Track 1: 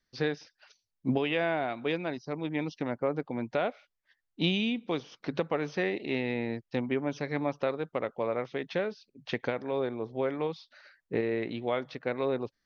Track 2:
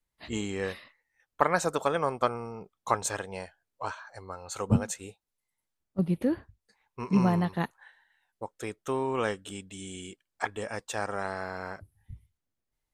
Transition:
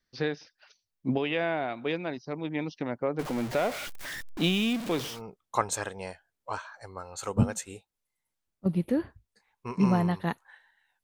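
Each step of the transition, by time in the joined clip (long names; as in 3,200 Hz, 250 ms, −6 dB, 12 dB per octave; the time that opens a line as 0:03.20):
track 1
0:03.19–0:05.22: converter with a step at zero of −31.5 dBFS
0:05.14: continue with track 2 from 0:02.47, crossfade 0.16 s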